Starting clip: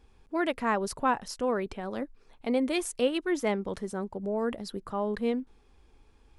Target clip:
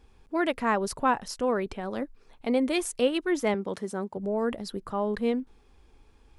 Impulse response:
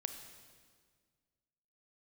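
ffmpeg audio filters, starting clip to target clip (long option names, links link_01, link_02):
-filter_complex "[0:a]asettb=1/sr,asplit=3[link_01][link_02][link_03];[link_01]atrim=end=3.544[link_04];[link_02]atrim=start=3.54:end=4.17,asetpts=PTS-STARTPTS,afade=type=in:duration=0.004:curve=qsin,afade=type=out:start_time=0.626:duration=0.004:curve=qsin,highpass=150[link_05];[link_03]atrim=start=4.166[link_06];[link_04][link_05]acrossfade=duration=0.004:curve1=hsin:curve2=qsin[link_07];[link_07][link_06]acrossfade=duration=0.004:curve1=qsin:curve2=hsin,volume=2dB"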